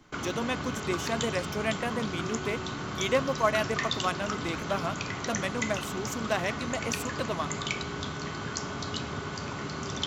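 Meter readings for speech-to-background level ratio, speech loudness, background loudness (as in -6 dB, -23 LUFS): 1.5 dB, -32.5 LUFS, -34.0 LUFS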